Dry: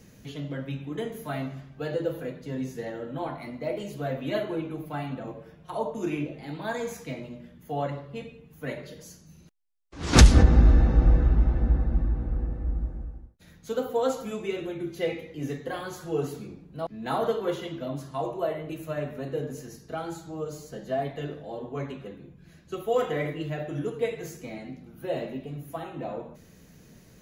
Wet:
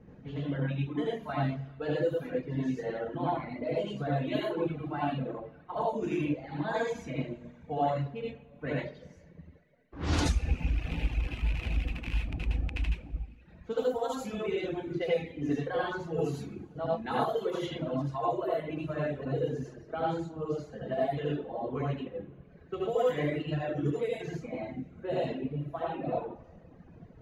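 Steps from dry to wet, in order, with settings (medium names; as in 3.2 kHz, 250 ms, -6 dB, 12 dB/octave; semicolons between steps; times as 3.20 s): rattle on loud lows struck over -22 dBFS, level -16 dBFS; level-controlled noise filter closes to 1.2 kHz, open at -22 dBFS; compression 16:1, threshold -28 dBFS, peak gain reduction 20.5 dB; reverberation, pre-delay 70 ms, DRR -4 dB; reverb removal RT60 1.3 s; trim -1.5 dB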